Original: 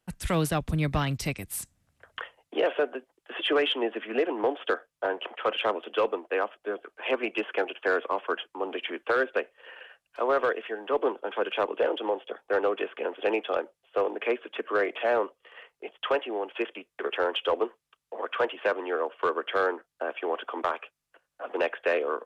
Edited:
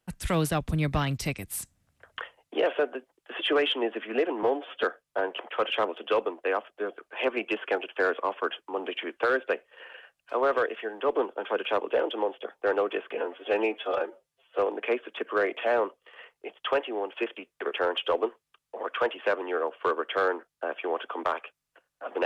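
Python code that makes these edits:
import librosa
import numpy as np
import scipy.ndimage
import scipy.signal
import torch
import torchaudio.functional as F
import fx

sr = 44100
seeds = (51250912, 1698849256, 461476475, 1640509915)

y = fx.edit(x, sr, fx.stretch_span(start_s=4.43, length_s=0.27, factor=1.5),
    fx.stretch_span(start_s=13.01, length_s=0.96, factor=1.5), tone=tone)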